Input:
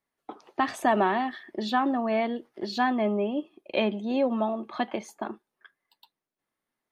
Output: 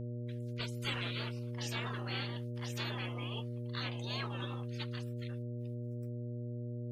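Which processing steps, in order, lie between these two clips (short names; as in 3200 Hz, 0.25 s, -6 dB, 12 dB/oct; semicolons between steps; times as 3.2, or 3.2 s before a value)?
spectral gate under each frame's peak -30 dB weak; buzz 120 Hz, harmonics 5, -48 dBFS -7 dB/oct; gain +7.5 dB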